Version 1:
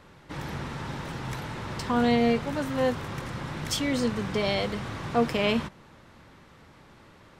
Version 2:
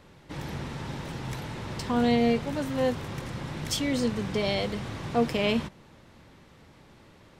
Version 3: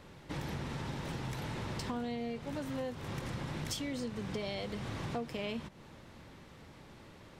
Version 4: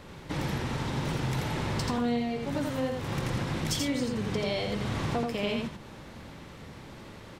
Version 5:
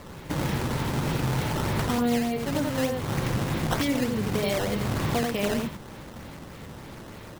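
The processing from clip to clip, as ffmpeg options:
-af "equalizer=f=1.3k:w=1.2:g=-5"
-af "acompressor=threshold=-35dB:ratio=10"
-af "aecho=1:1:84:0.668,volume=6.5dB"
-af "acrusher=samples=11:mix=1:aa=0.000001:lfo=1:lforange=17.6:lforate=3.3,volume=4dB"

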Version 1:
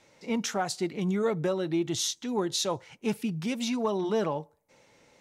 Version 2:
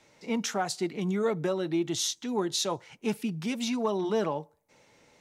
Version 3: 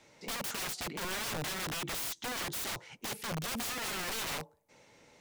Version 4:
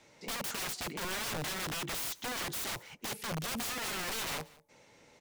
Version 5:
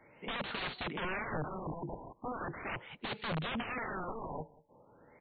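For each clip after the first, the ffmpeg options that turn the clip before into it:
-filter_complex "[0:a]bandreject=f=530:w=17,acrossover=split=130[a][b];[a]acompressor=threshold=-57dB:ratio=6[c];[c][b]amix=inputs=2:normalize=0"
-af "aeval=exprs='(mod(39.8*val(0)+1,2)-1)/39.8':c=same"
-af "aecho=1:1:186:0.075"
-af "asuperstop=centerf=5300:order=4:qfactor=1.9,afftfilt=real='re*lt(b*sr/1024,1000*pow(4700/1000,0.5+0.5*sin(2*PI*0.39*pts/sr)))':imag='im*lt(b*sr/1024,1000*pow(4700/1000,0.5+0.5*sin(2*PI*0.39*pts/sr)))':win_size=1024:overlap=0.75,volume=1.5dB"

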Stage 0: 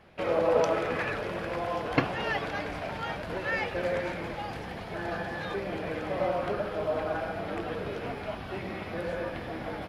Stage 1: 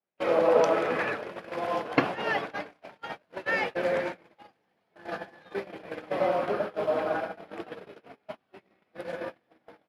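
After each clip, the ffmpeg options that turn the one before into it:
-af "highpass=200,agate=range=-37dB:threshold=-32dB:ratio=16:detection=peak,adynamicequalizer=threshold=0.00708:dfrequency=2200:dqfactor=0.7:tfrequency=2200:tqfactor=0.7:attack=5:release=100:ratio=0.375:range=2:mode=cutabove:tftype=highshelf,volume=3dB"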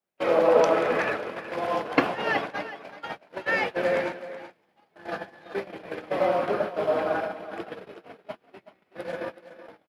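-filter_complex "[0:a]acrossover=split=140[a][b];[a]aeval=exprs='(mod(200*val(0)+1,2)-1)/200':c=same[c];[b]aecho=1:1:376:0.211[d];[c][d]amix=inputs=2:normalize=0,volume=2.5dB"

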